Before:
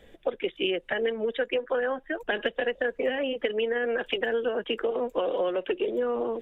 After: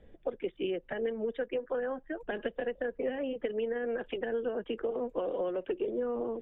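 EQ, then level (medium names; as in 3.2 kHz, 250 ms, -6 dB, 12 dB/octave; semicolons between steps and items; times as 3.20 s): low-pass 1.3 kHz 6 dB/octave; bass shelf 280 Hz +8 dB; -7.0 dB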